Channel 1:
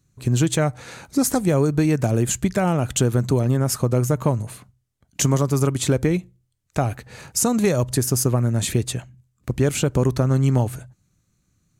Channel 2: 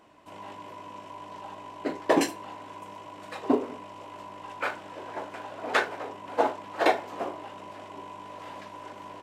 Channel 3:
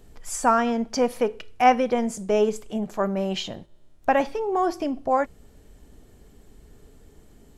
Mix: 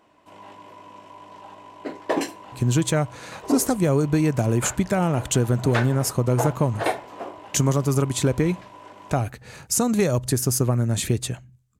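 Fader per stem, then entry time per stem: -1.5 dB, -1.5 dB, mute; 2.35 s, 0.00 s, mute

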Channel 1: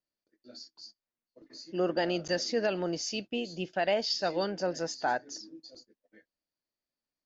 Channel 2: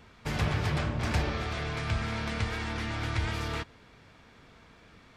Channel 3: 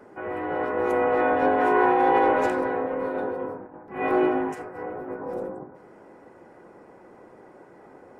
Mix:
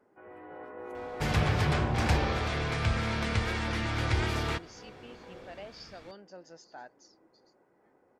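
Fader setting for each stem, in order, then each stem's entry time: -17.5 dB, +2.0 dB, -18.0 dB; 1.70 s, 0.95 s, 0.00 s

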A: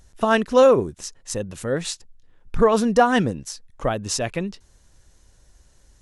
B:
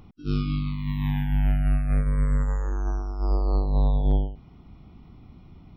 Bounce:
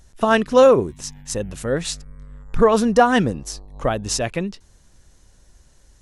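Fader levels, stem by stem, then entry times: +2.0 dB, -18.0 dB; 0.00 s, 0.00 s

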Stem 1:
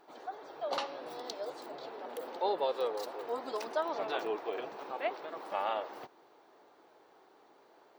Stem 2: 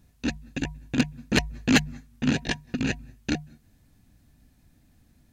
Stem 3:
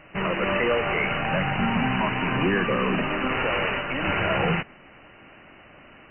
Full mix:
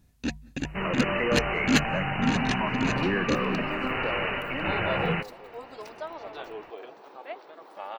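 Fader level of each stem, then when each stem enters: -4.5 dB, -2.5 dB, -3.5 dB; 2.25 s, 0.00 s, 0.60 s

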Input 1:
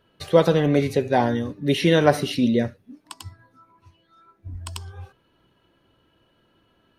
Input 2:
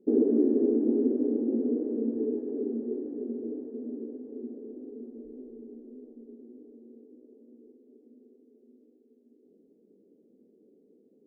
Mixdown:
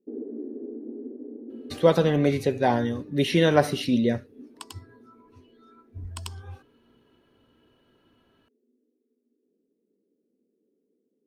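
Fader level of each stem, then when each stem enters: -2.5 dB, -12.5 dB; 1.50 s, 0.00 s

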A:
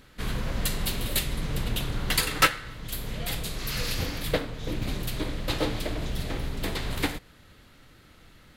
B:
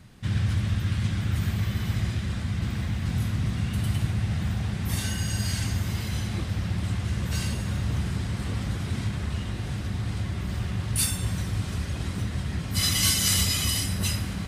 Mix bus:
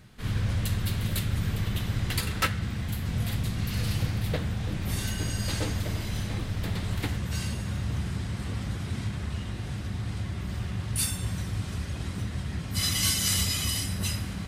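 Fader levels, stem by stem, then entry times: -7.0 dB, -3.0 dB; 0.00 s, 0.00 s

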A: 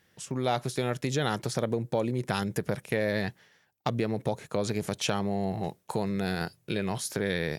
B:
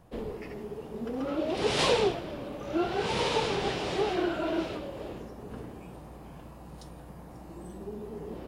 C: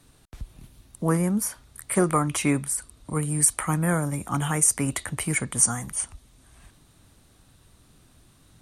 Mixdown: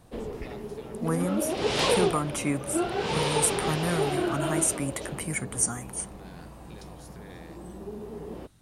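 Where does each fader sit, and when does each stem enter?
-19.0 dB, +1.0 dB, -5.5 dB; 0.00 s, 0.00 s, 0.00 s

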